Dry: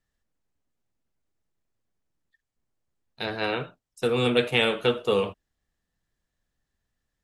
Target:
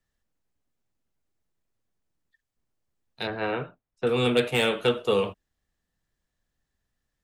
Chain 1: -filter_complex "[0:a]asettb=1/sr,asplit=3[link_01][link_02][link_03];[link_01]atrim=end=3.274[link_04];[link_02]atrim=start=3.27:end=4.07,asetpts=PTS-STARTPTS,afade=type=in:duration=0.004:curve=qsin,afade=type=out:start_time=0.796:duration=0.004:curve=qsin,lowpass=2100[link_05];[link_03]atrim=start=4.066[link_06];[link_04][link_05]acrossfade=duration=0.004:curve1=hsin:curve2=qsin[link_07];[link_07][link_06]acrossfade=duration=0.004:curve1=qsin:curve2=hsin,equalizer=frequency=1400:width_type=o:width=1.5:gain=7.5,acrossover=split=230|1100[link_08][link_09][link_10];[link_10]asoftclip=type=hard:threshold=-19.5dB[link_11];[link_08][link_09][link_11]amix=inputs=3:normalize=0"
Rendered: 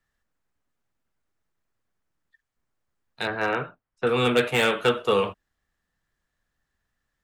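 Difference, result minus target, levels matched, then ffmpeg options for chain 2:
1,000 Hz band +3.0 dB
-filter_complex "[0:a]asettb=1/sr,asplit=3[link_01][link_02][link_03];[link_01]atrim=end=3.274[link_04];[link_02]atrim=start=3.27:end=4.07,asetpts=PTS-STARTPTS,afade=type=in:duration=0.004:curve=qsin,afade=type=out:start_time=0.796:duration=0.004:curve=qsin,lowpass=2100[link_05];[link_03]atrim=start=4.066[link_06];[link_04][link_05]acrossfade=duration=0.004:curve1=hsin:curve2=qsin[link_07];[link_07][link_06]acrossfade=duration=0.004:curve1=qsin:curve2=hsin,acrossover=split=230|1100[link_08][link_09][link_10];[link_10]asoftclip=type=hard:threshold=-19.5dB[link_11];[link_08][link_09][link_11]amix=inputs=3:normalize=0"

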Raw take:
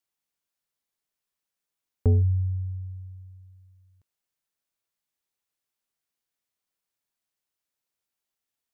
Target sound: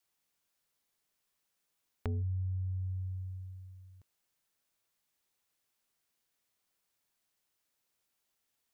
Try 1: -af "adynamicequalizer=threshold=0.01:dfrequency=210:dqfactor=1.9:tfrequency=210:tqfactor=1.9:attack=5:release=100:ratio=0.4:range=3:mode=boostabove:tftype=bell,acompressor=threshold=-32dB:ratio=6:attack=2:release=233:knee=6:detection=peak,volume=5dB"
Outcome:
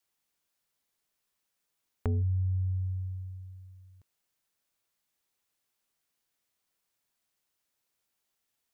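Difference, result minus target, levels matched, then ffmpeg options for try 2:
downward compressor: peak gain reduction −6 dB
-af "adynamicequalizer=threshold=0.01:dfrequency=210:dqfactor=1.9:tfrequency=210:tqfactor=1.9:attack=5:release=100:ratio=0.4:range=3:mode=boostabove:tftype=bell,acompressor=threshold=-39dB:ratio=6:attack=2:release=233:knee=6:detection=peak,volume=5dB"

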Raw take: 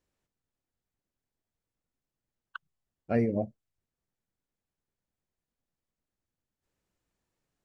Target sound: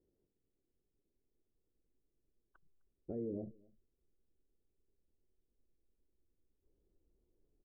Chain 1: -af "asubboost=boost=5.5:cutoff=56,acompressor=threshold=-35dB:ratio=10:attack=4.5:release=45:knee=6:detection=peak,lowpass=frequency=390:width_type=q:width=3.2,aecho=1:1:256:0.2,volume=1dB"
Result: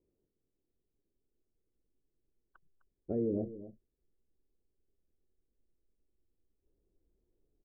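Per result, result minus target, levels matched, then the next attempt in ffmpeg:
downward compressor: peak gain reduction −8 dB; echo-to-direct +12 dB
-af "asubboost=boost=5.5:cutoff=56,acompressor=threshold=-44dB:ratio=10:attack=4.5:release=45:knee=6:detection=peak,lowpass=frequency=390:width_type=q:width=3.2,aecho=1:1:256:0.2,volume=1dB"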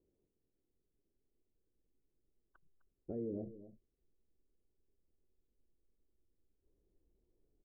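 echo-to-direct +12 dB
-af "asubboost=boost=5.5:cutoff=56,acompressor=threshold=-44dB:ratio=10:attack=4.5:release=45:knee=6:detection=peak,lowpass=frequency=390:width_type=q:width=3.2,aecho=1:1:256:0.0501,volume=1dB"

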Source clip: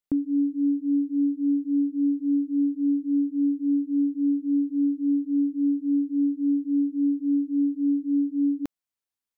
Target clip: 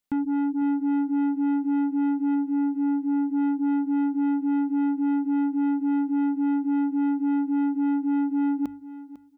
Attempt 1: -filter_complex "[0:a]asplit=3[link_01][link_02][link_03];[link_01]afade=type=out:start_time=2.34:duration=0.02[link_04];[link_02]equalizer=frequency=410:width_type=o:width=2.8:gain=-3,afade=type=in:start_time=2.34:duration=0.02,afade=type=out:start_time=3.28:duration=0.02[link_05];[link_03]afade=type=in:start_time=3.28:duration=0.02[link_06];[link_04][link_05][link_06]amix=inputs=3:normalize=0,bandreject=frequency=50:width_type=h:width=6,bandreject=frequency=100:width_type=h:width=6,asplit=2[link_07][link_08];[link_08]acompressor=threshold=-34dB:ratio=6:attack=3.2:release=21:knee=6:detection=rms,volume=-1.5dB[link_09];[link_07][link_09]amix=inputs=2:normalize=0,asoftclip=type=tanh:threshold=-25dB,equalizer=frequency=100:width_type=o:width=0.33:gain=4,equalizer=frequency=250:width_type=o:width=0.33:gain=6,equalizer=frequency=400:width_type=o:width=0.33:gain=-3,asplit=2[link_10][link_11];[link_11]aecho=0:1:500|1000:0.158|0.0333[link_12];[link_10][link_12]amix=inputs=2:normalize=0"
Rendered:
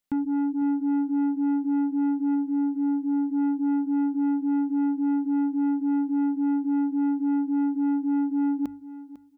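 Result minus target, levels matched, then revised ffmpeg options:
downward compressor: peak gain reduction +9.5 dB
-filter_complex "[0:a]asplit=3[link_01][link_02][link_03];[link_01]afade=type=out:start_time=2.34:duration=0.02[link_04];[link_02]equalizer=frequency=410:width_type=o:width=2.8:gain=-3,afade=type=in:start_time=2.34:duration=0.02,afade=type=out:start_time=3.28:duration=0.02[link_05];[link_03]afade=type=in:start_time=3.28:duration=0.02[link_06];[link_04][link_05][link_06]amix=inputs=3:normalize=0,bandreject=frequency=50:width_type=h:width=6,bandreject=frequency=100:width_type=h:width=6,asplit=2[link_07][link_08];[link_08]acompressor=threshold=-22dB:ratio=6:attack=3.2:release=21:knee=6:detection=rms,volume=-1.5dB[link_09];[link_07][link_09]amix=inputs=2:normalize=0,asoftclip=type=tanh:threshold=-25dB,equalizer=frequency=100:width_type=o:width=0.33:gain=4,equalizer=frequency=250:width_type=o:width=0.33:gain=6,equalizer=frequency=400:width_type=o:width=0.33:gain=-3,asplit=2[link_10][link_11];[link_11]aecho=0:1:500|1000:0.158|0.0333[link_12];[link_10][link_12]amix=inputs=2:normalize=0"

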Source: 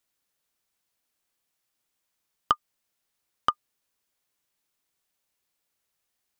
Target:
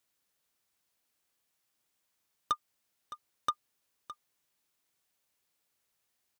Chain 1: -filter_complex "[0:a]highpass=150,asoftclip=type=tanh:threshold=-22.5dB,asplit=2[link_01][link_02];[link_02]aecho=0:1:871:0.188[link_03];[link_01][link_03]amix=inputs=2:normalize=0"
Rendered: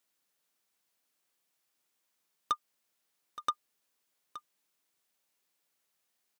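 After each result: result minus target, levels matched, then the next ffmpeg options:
echo 258 ms late; 125 Hz band −5.5 dB
-filter_complex "[0:a]highpass=150,asoftclip=type=tanh:threshold=-22.5dB,asplit=2[link_01][link_02];[link_02]aecho=0:1:613:0.188[link_03];[link_01][link_03]amix=inputs=2:normalize=0"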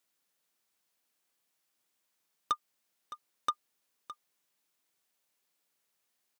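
125 Hz band −5.5 dB
-filter_complex "[0:a]highpass=40,asoftclip=type=tanh:threshold=-22.5dB,asplit=2[link_01][link_02];[link_02]aecho=0:1:613:0.188[link_03];[link_01][link_03]amix=inputs=2:normalize=0"

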